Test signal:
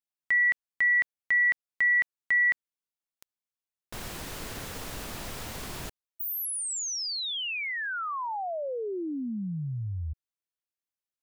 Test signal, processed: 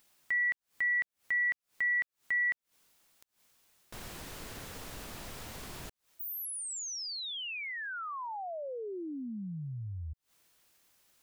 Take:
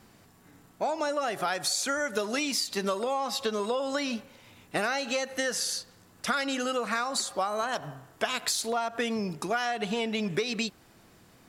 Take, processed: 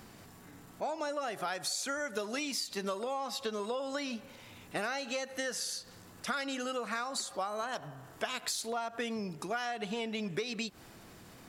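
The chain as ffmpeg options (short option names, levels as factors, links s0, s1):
-af "acompressor=mode=upward:threshold=0.0224:ratio=2.5:attack=0.33:release=117:knee=2.83:detection=peak,volume=0.473"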